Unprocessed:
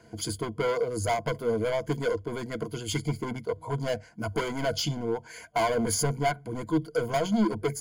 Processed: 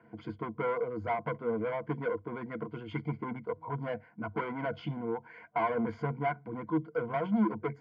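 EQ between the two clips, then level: cabinet simulation 180–2000 Hz, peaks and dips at 280 Hz -3 dB, 400 Hz -8 dB, 620 Hz -9 dB, 1.6 kHz -5 dB; 0.0 dB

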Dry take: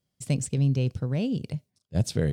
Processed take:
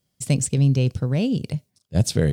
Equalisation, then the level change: treble shelf 4.8 kHz +4.5 dB; +5.5 dB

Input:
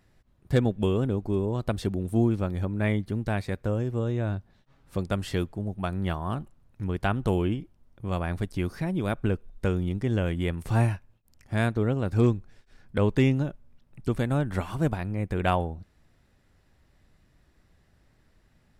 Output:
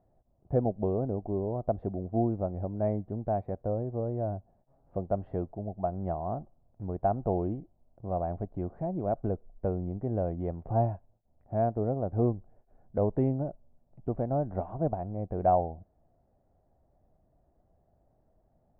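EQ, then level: resonant low-pass 690 Hz, resonance Q 4.9; distance through air 280 m; -6.5 dB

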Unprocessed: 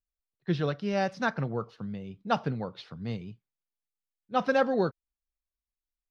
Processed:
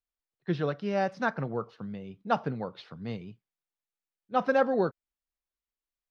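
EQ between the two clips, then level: bass shelf 150 Hz -8.5 dB; treble shelf 4.9 kHz -9.5 dB; dynamic bell 3.4 kHz, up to -4 dB, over -45 dBFS, Q 0.85; +1.5 dB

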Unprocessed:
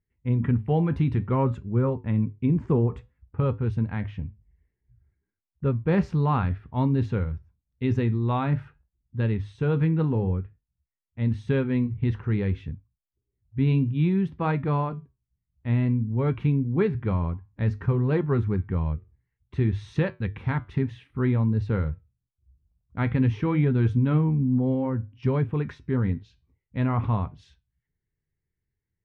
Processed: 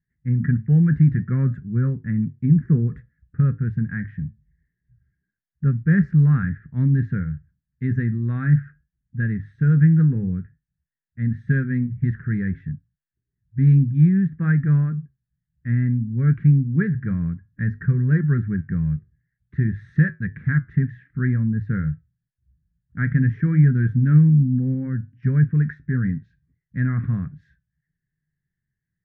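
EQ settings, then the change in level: FFT filter 100 Hz 0 dB, 150 Hz +13 dB, 920 Hz -21 dB, 1.7 kHz +15 dB, 2.7 kHz -16 dB; -3.0 dB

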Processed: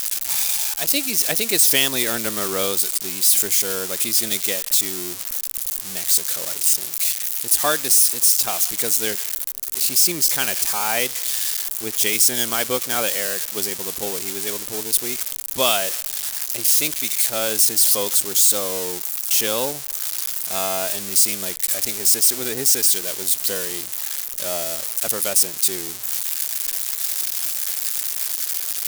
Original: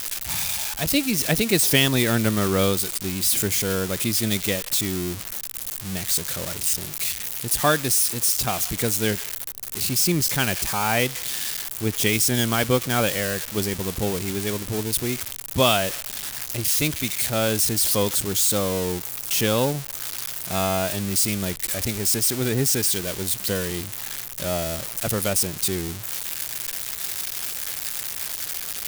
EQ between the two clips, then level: tone controls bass -12 dB, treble +7 dB; peaking EQ 86 Hz -5 dB 1.5 oct; -1.0 dB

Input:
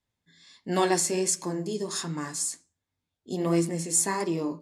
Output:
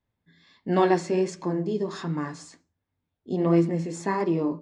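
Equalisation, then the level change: distance through air 61 m; tape spacing loss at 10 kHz 24 dB; +5.0 dB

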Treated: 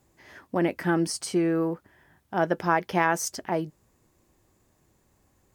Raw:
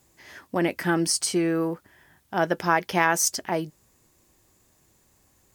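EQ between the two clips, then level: treble shelf 2.2 kHz -9 dB; 0.0 dB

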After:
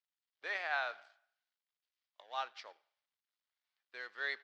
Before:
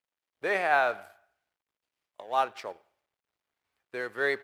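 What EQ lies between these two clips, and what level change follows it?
distance through air 75 m; cabinet simulation 120–5100 Hz, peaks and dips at 180 Hz -5 dB, 400 Hz -3 dB, 2.5 kHz -4 dB; differentiator; +5.0 dB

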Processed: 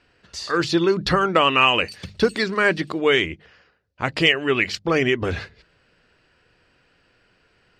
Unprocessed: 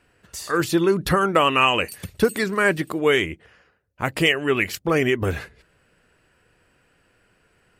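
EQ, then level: resonant low-pass 4.7 kHz, resonance Q 2.1; hum notches 50/100/150/200 Hz; 0.0 dB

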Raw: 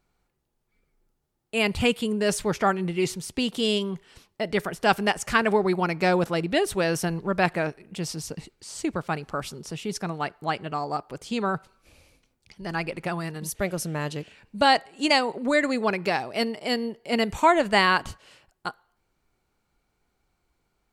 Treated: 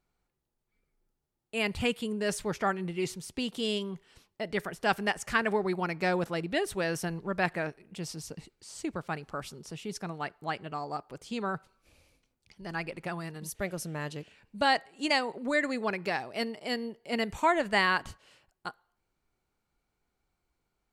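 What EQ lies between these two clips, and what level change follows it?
dynamic bell 1.8 kHz, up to +4 dB, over -38 dBFS, Q 3.4; -7.0 dB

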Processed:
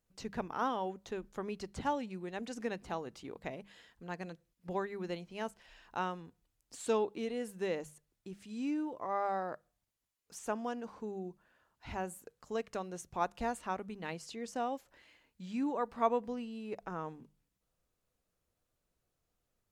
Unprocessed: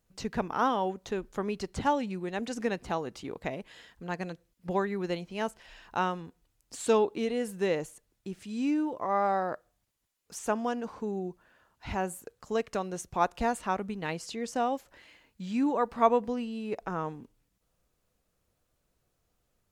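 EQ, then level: hum notches 50/100/150/200 Hz; -7.0 dB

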